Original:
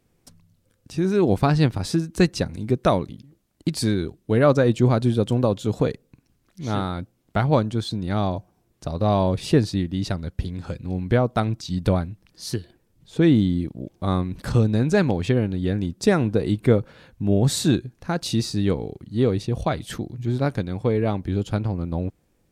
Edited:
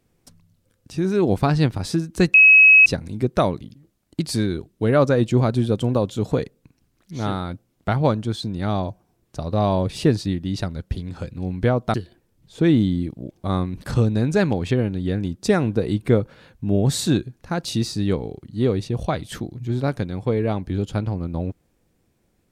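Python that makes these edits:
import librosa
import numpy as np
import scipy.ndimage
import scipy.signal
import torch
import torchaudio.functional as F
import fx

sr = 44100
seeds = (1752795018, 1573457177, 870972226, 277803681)

y = fx.edit(x, sr, fx.insert_tone(at_s=2.34, length_s=0.52, hz=2560.0, db=-7.0),
    fx.cut(start_s=11.42, length_s=1.1), tone=tone)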